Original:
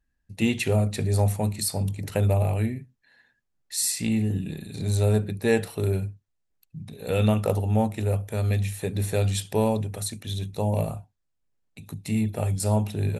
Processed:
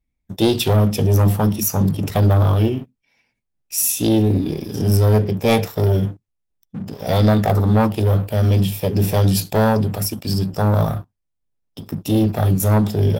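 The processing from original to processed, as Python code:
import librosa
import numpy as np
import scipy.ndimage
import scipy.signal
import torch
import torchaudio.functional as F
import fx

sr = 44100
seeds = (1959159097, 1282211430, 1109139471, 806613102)

y = fx.low_shelf(x, sr, hz=260.0, db=4.0)
y = fx.leveller(y, sr, passes=2)
y = fx.formant_shift(y, sr, semitones=5)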